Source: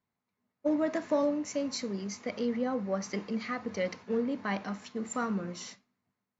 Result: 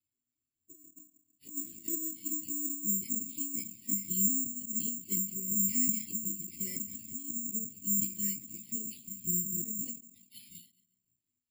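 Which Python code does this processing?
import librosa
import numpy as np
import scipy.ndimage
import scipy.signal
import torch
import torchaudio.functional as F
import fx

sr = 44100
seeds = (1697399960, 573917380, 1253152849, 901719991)

p1 = fx.block_reorder(x, sr, ms=99.0, group=4)
p2 = scipy.signal.sosfilt(scipy.signal.ellip(3, 1.0, 50, [310.0, 2700.0], 'bandstop', fs=sr, output='sos'), p1)
p3 = fx.over_compress(p2, sr, threshold_db=-36.0, ratio=-0.5)
p4 = fx.env_flanger(p3, sr, rest_ms=2.7, full_db=-32.0)
p5 = fx.rotary(p4, sr, hz=1.2)
p6 = fx.stretch_vocoder_free(p5, sr, factor=1.8)
p7 = p6 + fx.echo_filtered(p6, sr, ms=140, feedback_pct=42, hz=2200.0, wet_db=-21.5, dry=0)
p8 = (np.kron(scipy.signal.resample_poly(p7, 1, 6), np.eye(6)[0]) * 6)[:len(p7)]
p9 = fx.end_taper(p8, sr, db_per_s=160.0)
y = F.gain(torch.from_numpy(p9), 1.5).numpy()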